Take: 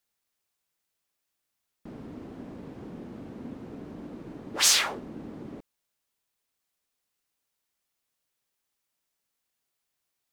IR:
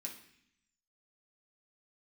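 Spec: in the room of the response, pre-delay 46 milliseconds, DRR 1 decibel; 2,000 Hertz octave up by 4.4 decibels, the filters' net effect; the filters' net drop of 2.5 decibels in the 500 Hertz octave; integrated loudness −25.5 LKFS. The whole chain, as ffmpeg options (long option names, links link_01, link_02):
-filter_complex "[0:a]equalizer=frequency=500:width_type=o:gain=-3.5,equalizer=frequency=2000:width_type=o:gain=5.5,asplit=2[link_01][link_02];[1:a]atrim=start_sample=2205,adelay=46[link_03];[link_02][link_03]afir=irnorm=-1:irlink=0,volume=2.5dB[link_04];[link_01][link_04]amix=inputs=2:normalize=0,volume=-6.5dB"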